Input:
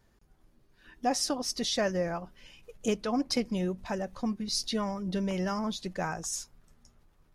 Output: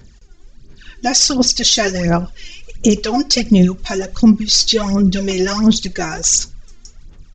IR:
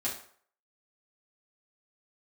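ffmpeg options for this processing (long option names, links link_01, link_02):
-filter_complex "[0:a]aemphasis=mode=production:type=cd,aphaser=in_gain=1:out_gain=1:delay=2.9:decay=0.73:speed=1.4:type=sinusoidal,equalizer=frequency=870:width=0.75:gain=-9.5,asplit=2[link_01][link_02];[link_02]adelay=90,highpass=300,lowpass=3400,asoftclip=type=hard:threshold=-18.5dB,volume=-27dB[link_03];[link_01][link_03]amix=inputs=2:normalize=0,asplit=2[link_04][link_05];[1:a]atrim=start_sample=2205,atrim=end_sample=3969[link_06];[link_05][link_06]afir=irnorm=-1:irlink=0,volume=-21.5dB[link_07];[link_04][link_07]amix=inputs=2:normalize=0,aresample=16000,aresample=44100,alimiter=level_in=15.5dB:limit=-1dB:release=50:level=0:latency=1,volume=-1dB"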